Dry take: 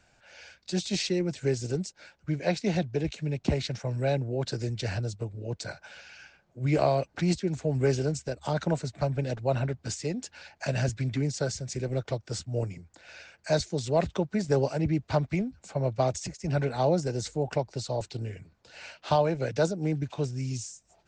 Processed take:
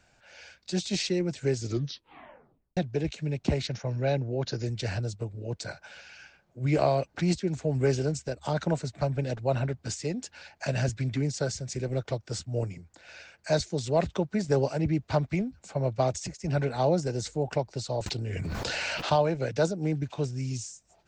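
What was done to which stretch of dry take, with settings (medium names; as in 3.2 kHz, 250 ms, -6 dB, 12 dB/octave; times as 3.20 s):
1.57 s: tape stop 1.20 s
3.67–4.66 s: brick-wall FIR low-pass 7.1 kHz
18.06–19.10 s: level flattener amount 100%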